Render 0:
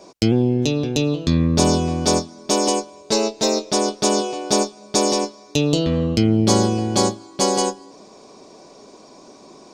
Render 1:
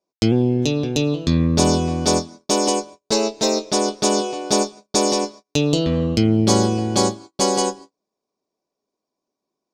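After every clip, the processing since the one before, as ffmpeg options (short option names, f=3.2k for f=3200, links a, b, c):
-af "agate=range=-38dB:threshold=-36dB:ratio=16:detection=peak"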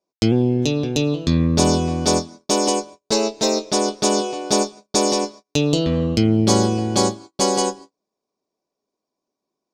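-af anull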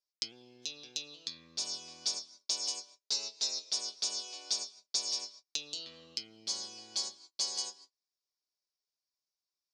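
-af "acompressor=threshold=-26dB:ratio=2.5,bandpass=f=4.9k:t=q:w=2.2:csg=0"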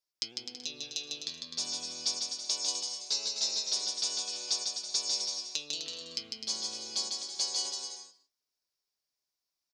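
-af "aecho=1:1:150|255|328.5|380|416:0.631|0.398|0.251|0.158|0.1,volume=1.5dB"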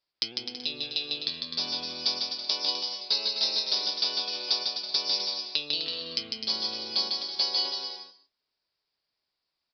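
-af "aresample=11025,aresample=44100,volume=8dB"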